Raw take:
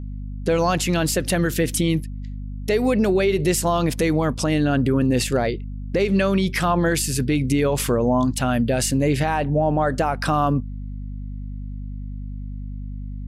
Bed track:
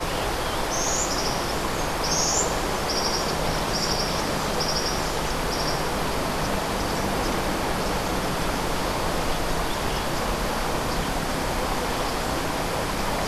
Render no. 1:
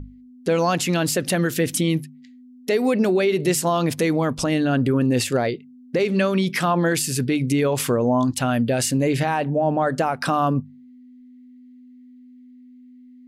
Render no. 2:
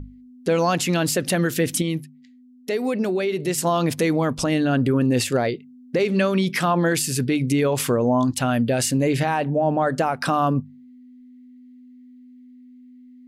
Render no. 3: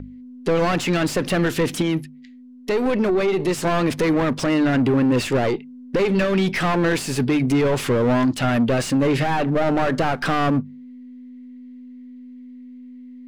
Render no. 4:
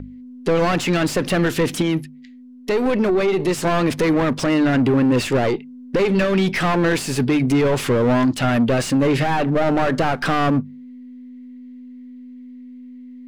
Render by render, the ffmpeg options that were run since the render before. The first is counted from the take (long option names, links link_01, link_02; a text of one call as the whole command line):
ffmpeg -i in.wav -af "bandreject=frequency=50:width_type=h:width=6,bandreject=frequency=100:width_type=h:width=6,bandreject=frequency=150:width_type=h:width=6,bandreject=frequency=200:width_type=h:width=6" out.wav
ffmpeg -i in.wav -filter_complex "[0:a]asplit=3[link_01][link_02][link_03];[link_01]atrim=end=1.822[link_04];[link_02]atrim=start=1.818:end=3.582,asetpts=PTS-STARTPTS,volume=-4dB[link_05];[link_03]atrim=start=3.578[link_06];[link_04][link_05]acrossfade=duration=0.004:curve1=hsin:curve2=hsin[link_07];[link_07][link_06]acrossfade=duration=0.004:curve1=hsin:curve2=hsin" out.wav
ffmpeg -i in.wav -filter_complex "[0:a]asplit=2[link_01][link_02];[link_02]highpass=frequency=720:poles=1,volume=22dB,asoftclip=type=tanh:threshold=-9dB[link_03];[link_01][link_03]amix=inputs=2:normalize=0,lowpass=frequency=1200:poles=1,volume=-6dB,acrossover=split=460|1600[link_04][link_05][link_06];[link_05]aeval=exprs='max(val(0),0)':channel_layout=same[link_07];[link_04][link_07][link_06]amix=inputs=3:normalize=0" out.wav
ffmpeg -i in.wav -af "volume=1.5dB" out.wav